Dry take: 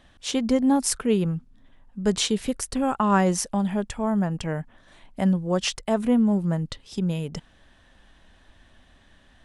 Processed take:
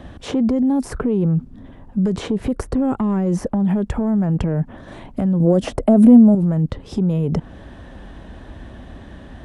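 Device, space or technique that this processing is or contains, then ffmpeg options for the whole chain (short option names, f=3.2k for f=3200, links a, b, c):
mastering chain: -filter_complex "[0:a]highpass=43,equalizer=f=380:t=o:w=0.77:g=2,acrossover=split=430|1900[a][b][c];[a]acompressor=threshold=-27dB:ratio=4[d];[b]acompressor=threshold=-35dB:ratio=4[e];[c]acompressor=threshold=-47dB:ratio=4[f];[d][e][f]amix=inputs=3:normalize=0,acompressor=threshold=-31dB:ratio=2,asoftclip=type=tanh:threshold=-22.5dB,tiltshelf=f=1.2k:g=8.5,alimiter=level_in=25.5dB:limit=-1dB:release=50:level=0:latency=1,asettb=1/sr,asplit=3[g][h][i];[g]atrim=end=5.404[j];[h]atrim=start=5.4:end=6.35,asetpts=PTS-STARTPTS,afade=t=in:d=0.004:c=qsin,afade=t=out:st=0.946:d=0.004:c=qsin,equalizer=f=250:t=o:w=0.67:g=10,equalizer=f=630:t=o:w=0.67:g=11,equalizer=f=10k:t=o:w=0.67:g=11[k];[i]atrim=start=6.346[l];[j][k]acrossfade=d=0.004:c1=hsin:c2=qsin[m];[m][l]acrossfade=d=0.004:c1=qsin:c2=hsin,volume=-11.5dB"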